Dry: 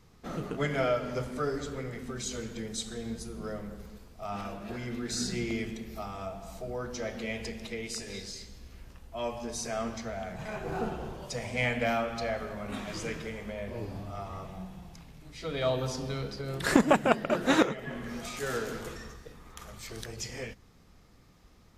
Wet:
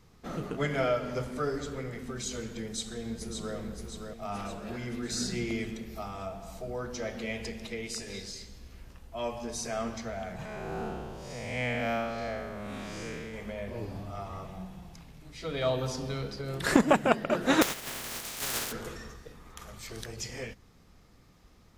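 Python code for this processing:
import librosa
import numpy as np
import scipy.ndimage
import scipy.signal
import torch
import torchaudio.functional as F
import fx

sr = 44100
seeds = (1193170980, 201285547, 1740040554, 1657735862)

y = fx.echo_throw(x, sr, start_s=2.64, length_s=0.92, ms=570, feedback_pct=55, wet_db=-5.5)
y = fx.spec_blur(y, sr, span_ms=174.0, at=(10.45, 13.34))
y = fx.spec_flatten(y, sr, power=0.2, at=(17.61, 18.71), fade=0.02)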